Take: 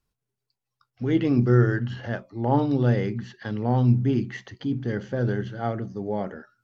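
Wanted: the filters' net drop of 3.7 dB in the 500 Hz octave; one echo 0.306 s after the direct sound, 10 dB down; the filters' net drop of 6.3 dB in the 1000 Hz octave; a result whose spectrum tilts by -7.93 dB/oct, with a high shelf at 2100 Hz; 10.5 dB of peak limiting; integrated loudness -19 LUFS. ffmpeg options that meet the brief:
-af "equalizer=f=500:t=o:g=-3.5,equalizer=f=1k:t=o:g=-6.5,highshelf=f=2.1k:g=-3.5,alimiter=limit=-19dB:level=0:latency=1,aecho=1:1:306:0.316,volume=10.5dB"

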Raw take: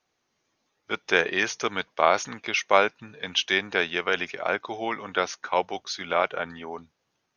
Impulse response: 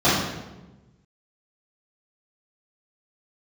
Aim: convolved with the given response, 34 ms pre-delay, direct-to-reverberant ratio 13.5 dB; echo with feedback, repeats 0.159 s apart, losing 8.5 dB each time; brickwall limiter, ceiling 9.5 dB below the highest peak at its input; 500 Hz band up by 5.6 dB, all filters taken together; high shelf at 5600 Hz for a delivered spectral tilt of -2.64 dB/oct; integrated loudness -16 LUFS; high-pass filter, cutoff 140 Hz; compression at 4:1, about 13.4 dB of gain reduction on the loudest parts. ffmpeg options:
-filter_complex "[0:a]highpass=140,equalizer=f=500:t=o:g=7,highshelf=f=5.6k:g=-3.5,acompressor=threshold=-27dB:ratio=4,alimiter=limit=-21dB:level=0:latency=1,aecho=1:1:159|318|477|636:0.376|0.143|0.0543|0.0206,asplit=2[a][b];[1:a]atrim=start_sample=2205,adelay=34[c];[b][c]afir=irnorm=-1:irlink=0,volume=-35dB[d];[a][d]amix=inputs=2:normalize=0,volume=18dB"

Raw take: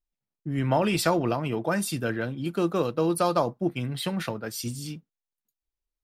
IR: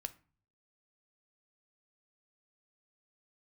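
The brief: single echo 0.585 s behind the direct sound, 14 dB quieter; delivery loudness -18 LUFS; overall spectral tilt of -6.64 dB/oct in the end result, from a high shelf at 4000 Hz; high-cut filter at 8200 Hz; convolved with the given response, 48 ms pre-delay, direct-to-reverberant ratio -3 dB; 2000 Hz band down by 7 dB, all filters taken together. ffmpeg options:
-filter_complex "[0:a]lowpass=8.2k,equalizer=f=2k:t=o:g=-8.5,highshelf=f=4k:g=-8,aecho=1:1:585:0.2,asplit=2[a][b];[1:a]atrim=start_sample=2205,adelay=48[c];[b][c]afir=irnorm=-1:irlink=0,volume=5.5dB[d];[a][d]amix=inputs=2:normalize=0,volume=5.5dB"

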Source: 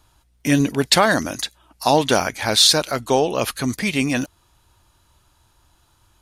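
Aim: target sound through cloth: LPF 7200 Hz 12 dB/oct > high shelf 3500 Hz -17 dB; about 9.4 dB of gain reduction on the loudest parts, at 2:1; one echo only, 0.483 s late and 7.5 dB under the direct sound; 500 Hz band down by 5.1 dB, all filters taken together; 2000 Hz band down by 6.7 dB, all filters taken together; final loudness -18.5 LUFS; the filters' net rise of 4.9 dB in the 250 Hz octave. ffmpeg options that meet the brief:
-af "equalizer=f=250:t=o:g=8,equalizer=f=500:t=o:g=-8,equalizer=f=2k:t=o:g=-3.5,acompressor=threshold=-27dB:ratio=2,lowpass=7.2k,highshelf=f=3.5k:g=-17,aecho=1:1:483:0.422,volume=9dB"

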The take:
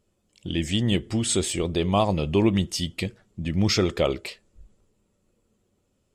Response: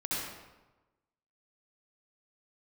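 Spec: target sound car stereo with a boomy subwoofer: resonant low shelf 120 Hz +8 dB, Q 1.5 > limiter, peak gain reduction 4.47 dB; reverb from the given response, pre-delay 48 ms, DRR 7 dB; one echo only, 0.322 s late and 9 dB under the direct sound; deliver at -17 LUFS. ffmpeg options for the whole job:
-filter_complex "[0:a]aecho=1:1:322:0.355,asplit=2[a][b];[1:a]atrim=start_sample=2205,adelay=48[c];[b][c]afir=irnorm=-1:irlink=0,volume=-13dB[d];[a][d]amix=inputs=2:normalize=0,lowshelf=f=120:t=q:w=1.5:g=8,volume=6dB,alimiter=limit=-5.5dB:level=0:latency=1"

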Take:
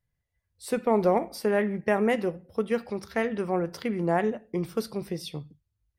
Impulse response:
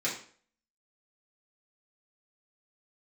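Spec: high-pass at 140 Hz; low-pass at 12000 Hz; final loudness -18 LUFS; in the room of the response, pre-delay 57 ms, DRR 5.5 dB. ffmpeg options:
-filter_complex "[0:a]highpass=140,lowpass=12k,asplit=2[a][b];[1:a]atrim=start_sample=2205,adelay=57[c];[b][c]afir=irnorm=-1:irlink=0,volume=-12.5dB[d];[a][d]amix=inputs=2:normalize=0,volume=9dB"

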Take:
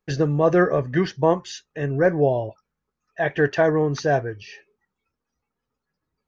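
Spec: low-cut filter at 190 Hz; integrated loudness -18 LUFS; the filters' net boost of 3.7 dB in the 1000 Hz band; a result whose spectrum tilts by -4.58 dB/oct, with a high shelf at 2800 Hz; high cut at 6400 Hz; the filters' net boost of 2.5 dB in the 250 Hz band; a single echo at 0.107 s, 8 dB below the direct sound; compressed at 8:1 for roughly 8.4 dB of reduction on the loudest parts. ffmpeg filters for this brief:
-af "highpass=190,lowpass=6.4k,equalizer=f=250:t=o:g=5.5,equalizer=f=1k:t=o:g=4,highshelf=f=2.8k:g=6.5,acompressor=threshold=-19dB:ratio=8,aecho=1:1:107:0.398,volume=7dB"

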